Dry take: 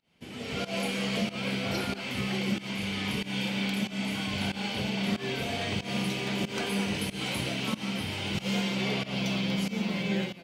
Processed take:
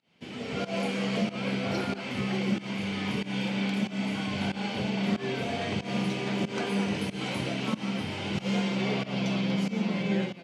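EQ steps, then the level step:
dynamic equaliser 3,600 Hz, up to −6 dB, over −47 dBFS, Q 0.7
band-pass filter 110–6,400 Hz
+2.5 dB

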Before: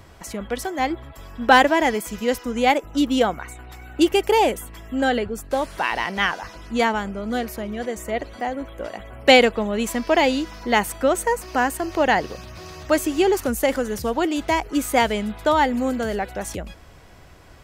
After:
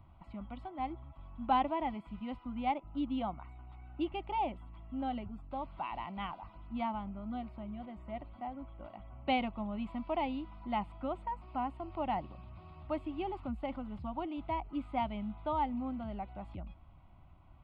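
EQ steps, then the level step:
dynamic equaliser 1,500 Hz, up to −5 dB, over −37 dBFS, Q 4
head-to-tape spacing loss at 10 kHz 44 dB
phaser with its sweep stopped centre 1,700 Hz, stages 6
−8.5 dB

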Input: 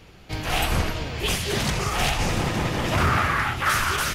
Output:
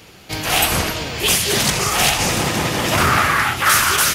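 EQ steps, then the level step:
high-pass filter 150 Hz 6 dB per octave
high-shelf EQ 5,200 Hz +10.5 dB
+6.0 dB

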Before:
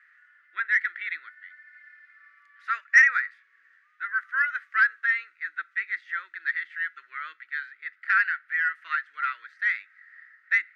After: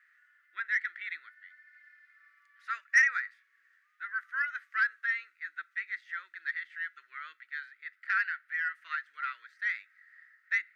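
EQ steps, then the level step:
high-shelf EQ 4,700 Hz +12 dB
−8.5 dB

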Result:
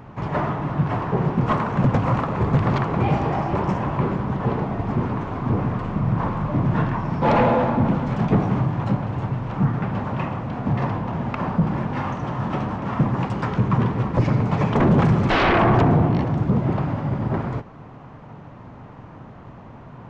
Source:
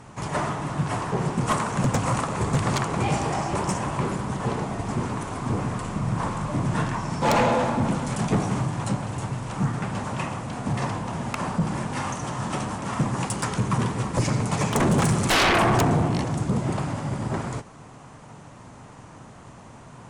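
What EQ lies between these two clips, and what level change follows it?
high-frequency loss of the air 51 metres
head-to-tape spacing loss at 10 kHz 44 dB
high-shelf EQ 2,500 Hz +8.5 dB
+5.5 dB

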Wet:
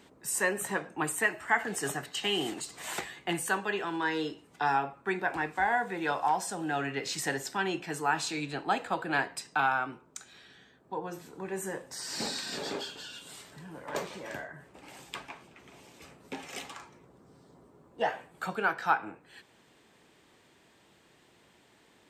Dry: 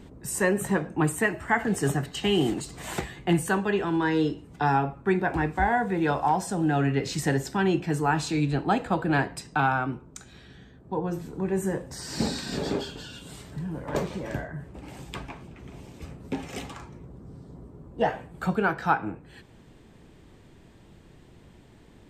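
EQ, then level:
high-pass filter 950 Hz 6 dB per octave
0.0 dB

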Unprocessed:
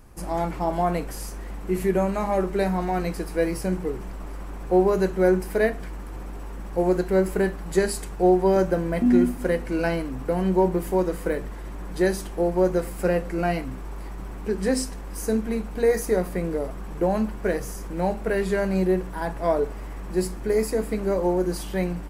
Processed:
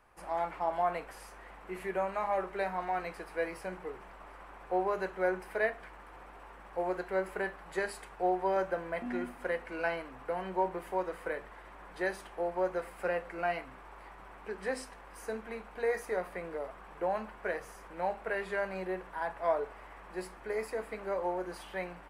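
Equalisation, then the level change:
three-way crossover with the lows and the highs turned down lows −19 dB, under 560 Hz, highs −17 dB, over 3,200 Hz
parametric band 9,400 Hz +5 dB 0.39 octaves
−3.5 dB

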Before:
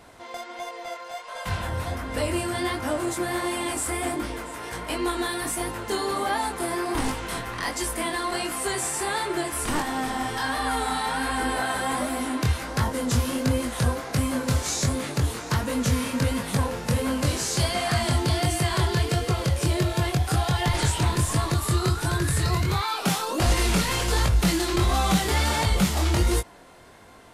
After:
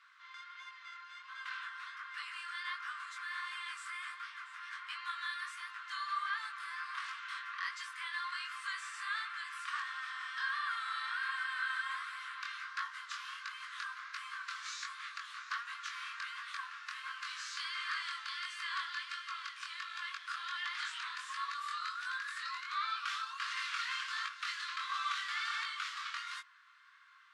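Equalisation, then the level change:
Chebyshev high-pass with heavy ripple 1,100 Hz, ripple 3 dB
head-to-tape spacing loss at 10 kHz 29 dB
0.0 dB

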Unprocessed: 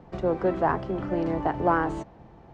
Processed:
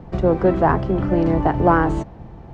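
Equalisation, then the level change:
low-shelf EQ 190 Hz +10 dB
+6.0 dB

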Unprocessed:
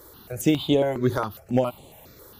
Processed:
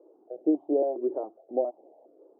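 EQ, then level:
elliptic band-pass filter 310–730 Hz, stop band 80 dB
parametric band 470 Hz −2 dB
−1.0 dB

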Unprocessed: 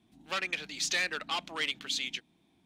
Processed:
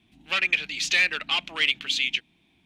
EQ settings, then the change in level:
low-shelf EQ 110 Hz +10 dB
parametric band 2,600 Hz +13 dB 1.1 octaves
0.0 dB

